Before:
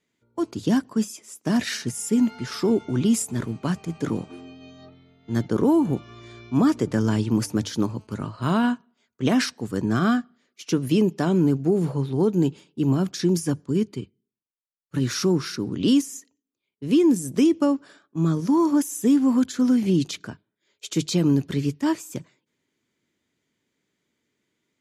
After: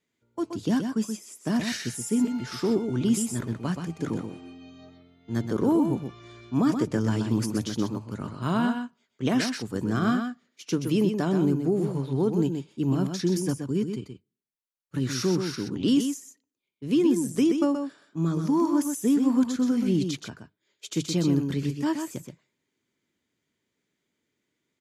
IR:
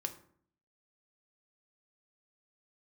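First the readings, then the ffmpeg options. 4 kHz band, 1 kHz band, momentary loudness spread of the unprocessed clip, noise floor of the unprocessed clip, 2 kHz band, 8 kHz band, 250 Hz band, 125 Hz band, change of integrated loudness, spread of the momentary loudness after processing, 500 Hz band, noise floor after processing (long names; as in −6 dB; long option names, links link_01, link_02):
−3.0 dB, −3.0 dB, 11 LU, −81 dBFS, −3.0 dB, −3.0 dB, −3.0 dB, −3.0 dB, −3.5 dB, 11 LU, −3.0 dB, −81 dBFS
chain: -af "aecho=1:1:126:0.473,volume=-4dB"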